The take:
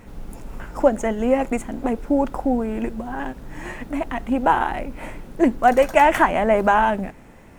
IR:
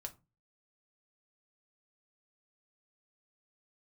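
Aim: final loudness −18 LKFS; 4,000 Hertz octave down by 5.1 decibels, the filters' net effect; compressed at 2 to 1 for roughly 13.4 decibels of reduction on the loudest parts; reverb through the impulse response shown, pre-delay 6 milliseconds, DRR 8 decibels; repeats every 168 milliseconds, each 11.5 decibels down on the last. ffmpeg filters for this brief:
-filter_complex "[0:a]equalizer=frequency=4000:width_type=o:gain=-8.5,acompressor=threshold=-36dB:ratio=2,aecho=1:1:168|336|504:0.266|0.0718|0.0194,asplit=2[link_01][link_02];[1:a]atrim=start_sample=2205,adelay=6[link_03];[link_02][link_03]afir=irnorm=-1:irlink=0,volume=-4.5dB[link_04];[link_01][link_04]amix=inputs=2:normalize=0,volume=14dB"

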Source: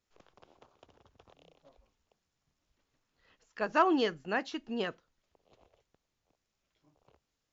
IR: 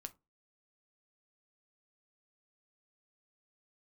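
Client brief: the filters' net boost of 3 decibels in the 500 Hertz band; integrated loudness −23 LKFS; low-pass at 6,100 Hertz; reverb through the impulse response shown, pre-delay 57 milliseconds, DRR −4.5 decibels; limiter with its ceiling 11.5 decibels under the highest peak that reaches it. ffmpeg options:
-filter_complex "[0:a]lowpass=6100,equalizer=frequency=500:width_type=o:gain=4,alimiter=limit=-23dB:level=0:latency=1,asplit=2[link_01][link_02];[1:a]atrim=start_sample=2205,adelay=57[link_03];[link_02][link_03]afir=irnorm=-1:irlink=0,volume=9.5dB[link_04];[link_01][link_04]amix=inputs=2:normalize=0,volume=5.5dB"

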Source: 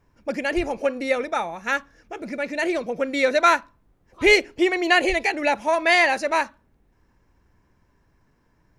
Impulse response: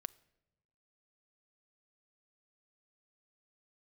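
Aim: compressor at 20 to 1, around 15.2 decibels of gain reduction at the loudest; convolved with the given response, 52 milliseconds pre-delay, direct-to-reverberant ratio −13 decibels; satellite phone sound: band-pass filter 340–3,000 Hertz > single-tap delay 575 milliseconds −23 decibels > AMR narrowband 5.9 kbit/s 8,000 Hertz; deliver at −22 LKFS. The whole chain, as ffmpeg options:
-filter_complex "[0:a]acompressor=threshold=-26dB:ratio=20,asplit=2[link_01][link_02];[1:a]atrim=start_sample=2205,adelay=52[link_03];[link_02][link_03]afir=irnorm=-1:irlink=0,volume=16.5dB[link_04];[link_01][link_04]amix=inputs=2:normalize=0,highpass=340,lowpass=3000,aecho=1:1:575:0.0708,volume=-1dB" -ar 8000 -c:a libopencore_amrnb -b:a 5900

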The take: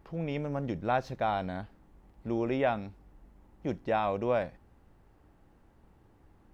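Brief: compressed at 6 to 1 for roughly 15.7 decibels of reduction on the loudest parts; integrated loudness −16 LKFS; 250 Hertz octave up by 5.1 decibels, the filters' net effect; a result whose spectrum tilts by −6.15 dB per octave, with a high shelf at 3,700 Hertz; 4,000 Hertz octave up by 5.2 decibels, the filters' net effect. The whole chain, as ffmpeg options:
ffmpeg -i in.wav -af "equalizer=frequency=250:width_type=o:gain=6.5,highshelf=frequency=3700:gain=5,equalizer=frequency=4000:width_type=o:gain=3.5,acompressor=threshold=-40dB:ratio=6,volume=28dB" out.wav

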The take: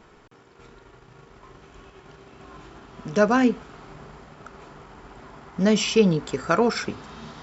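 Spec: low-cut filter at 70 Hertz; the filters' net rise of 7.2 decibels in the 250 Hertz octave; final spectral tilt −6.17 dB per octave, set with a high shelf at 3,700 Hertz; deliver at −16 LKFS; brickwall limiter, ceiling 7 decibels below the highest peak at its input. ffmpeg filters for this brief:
ffmpeg -i in.wav -af "highpass=70,equalizer=frequency=250:width_type=o:gain=8.5,highshelf=frequency=3700:gain=-5.5,volume=5dB,alimiter=limit=-4.5dB:level=0:latency=1" out.wav

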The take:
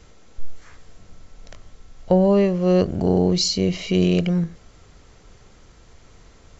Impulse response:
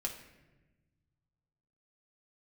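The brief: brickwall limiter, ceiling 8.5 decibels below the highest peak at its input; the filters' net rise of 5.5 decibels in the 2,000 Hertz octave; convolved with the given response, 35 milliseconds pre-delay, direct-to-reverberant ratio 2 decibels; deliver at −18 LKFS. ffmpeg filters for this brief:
-filter_complex "[0:a]equalizer=frequency=2000:width_type=o:gain=7,alimiter=limit=-13.5dB:level=0:latency=1,asplit=2[link_01][link_02];[1:a]atrim=start_sample=2205,adelay=35[link_03];[link_02][link_03]afir=irnorm=-1:irlink=0,volume=-3dB[link_04];[link_01][link_04]amix=inputs=2:normalize=0,volume=4dB"

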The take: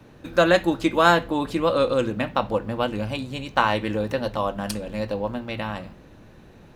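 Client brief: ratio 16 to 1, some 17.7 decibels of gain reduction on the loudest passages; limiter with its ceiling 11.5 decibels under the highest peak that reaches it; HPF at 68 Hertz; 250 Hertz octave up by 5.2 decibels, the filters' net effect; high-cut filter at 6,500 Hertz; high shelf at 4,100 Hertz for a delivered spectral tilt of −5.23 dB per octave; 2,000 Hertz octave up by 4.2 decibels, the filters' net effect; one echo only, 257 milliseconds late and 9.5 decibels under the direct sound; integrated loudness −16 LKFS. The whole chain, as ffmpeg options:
ffmpeg -i in.wav -af "highpass=68,lowpass=6500,equalizer=frequency=250:width_type=o:gain=7,equalizer=frequency=2000:width_type=o:gain=7.5,highshelf=frequency=4100:gain=-8,acompressor=threshold=-28dB:ratio=16,alimiter=limit=-23.5dB:level=0:latency=1,aecho=1:1:257:0.335,volume=18.5dB" out.wav

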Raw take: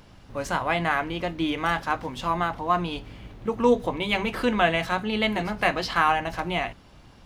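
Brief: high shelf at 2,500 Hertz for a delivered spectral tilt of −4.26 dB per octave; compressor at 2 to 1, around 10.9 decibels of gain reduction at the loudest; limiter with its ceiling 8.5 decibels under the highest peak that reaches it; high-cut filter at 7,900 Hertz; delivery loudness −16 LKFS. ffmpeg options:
ffmpeg -i in.wav -af "lowpass=7900,highshelf=frequency=2500:gain=7.5,acompressor=threshold=-35dB:ratio=2,volume=19dB,alimiter=limit=-4dB:level=0:latency=1" out.wav

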